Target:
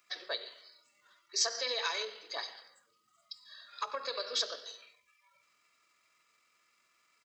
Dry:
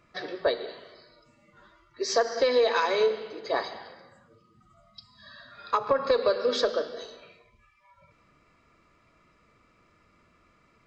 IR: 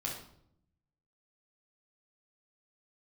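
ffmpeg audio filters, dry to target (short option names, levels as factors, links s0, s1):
-af "atempo=1.5,aderivative,bandreject=f=47.17:t=h:w=4,bandreject=f=94.34:t=h:w=4,bandreject=f=141.51:t=h:w=4,bandreject=f=188.68:t=h:w=4,bandreject=f=235.85:t=h:w=4,bandreject=f=283.02:t=h:w=4,bandreject=f=330.19:t=h:w=4,bandreject=f=377.36:t=h:w=4,bandreject=f=424.53:t=h:w=4,bandreject=f=471.7:t=h:w=4,bandreject=f=518.87:t=h:w=4,bandreject=f=566.04:t=h:w=4,bandreject=f=613.21:t=h:w=4,volume=2"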